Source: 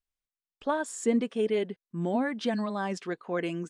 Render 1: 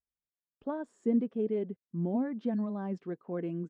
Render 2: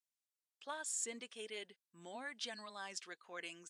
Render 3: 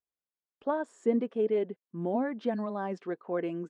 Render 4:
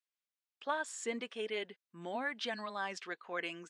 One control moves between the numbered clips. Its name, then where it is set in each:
resonant band-pass, frequency: 160, 7,900, 460, 2,700 Hertz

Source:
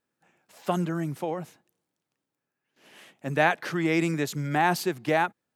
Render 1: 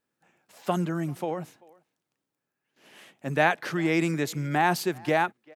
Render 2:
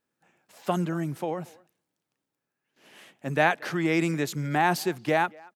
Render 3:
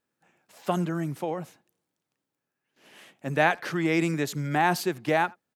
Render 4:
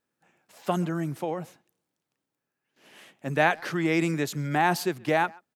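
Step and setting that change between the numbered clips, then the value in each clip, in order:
far-end echo of a speakerphone, delay time: 390, 230, 80, 130 milliseconds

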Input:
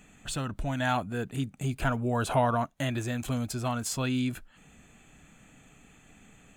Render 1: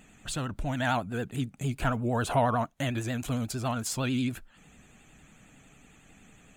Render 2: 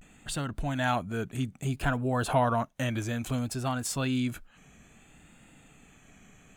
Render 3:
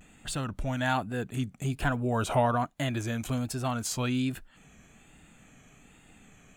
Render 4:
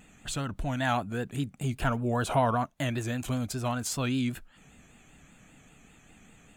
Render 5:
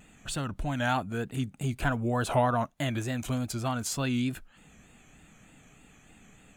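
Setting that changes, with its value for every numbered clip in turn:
pitch vibrato, speed: 11, 0.6, 1.2, 5.1, 3.3 Hertz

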